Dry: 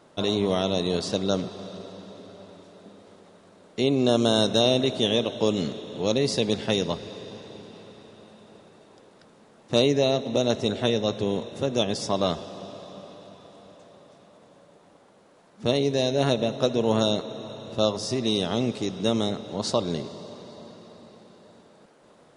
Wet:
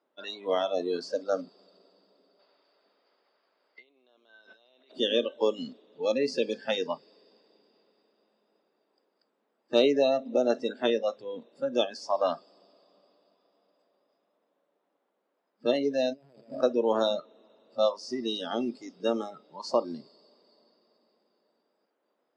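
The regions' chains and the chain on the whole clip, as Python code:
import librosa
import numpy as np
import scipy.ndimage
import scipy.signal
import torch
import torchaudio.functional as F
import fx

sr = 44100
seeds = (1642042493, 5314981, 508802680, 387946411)

y = fx.chain(x, sr, fx.over_compress(threshold_db=-32.0, ratio=-1.0),
    fx.bandpass_q(hz=2700.0, q=0.52),
    fx.air_absorb(metres=72.0), at=(2.39, 4.92))
y = fx.chain(y, sr, fx.median_filter(points=25),
    fx.over_compress(threshold_db=-34.0, ratio=-1.0), at=(16.13, 16.63))
y = scipy.signal.sosfilt(scipy.signal.butter(4, 250.0, 'highpass', fs=sr, output='sos'), y)
y = fx.noise_reduce_blind(y, sr, reduce_db=21)
y = scipy.signal.sosfilt(scipy.signal.butter(2, 3300.0, 'lowpass', fs=sr, output='sos'), y)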